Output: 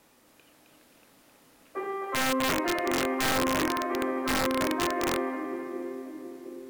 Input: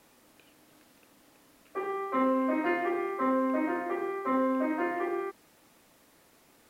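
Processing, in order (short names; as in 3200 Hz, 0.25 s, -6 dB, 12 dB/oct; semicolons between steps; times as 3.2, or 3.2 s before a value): split-band echo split 450 Hz, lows 0.723 s, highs 0.264 s, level -4 dB; wrapped overs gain 19.5 dB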